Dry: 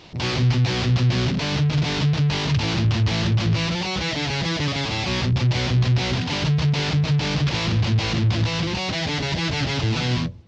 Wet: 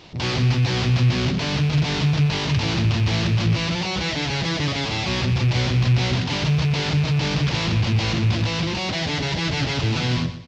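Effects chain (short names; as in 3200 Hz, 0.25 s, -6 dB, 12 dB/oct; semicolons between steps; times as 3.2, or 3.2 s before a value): rattling part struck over -19 dBFS, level -24 dBFS; feedback echo 0.121 s, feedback 33%, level -12 dB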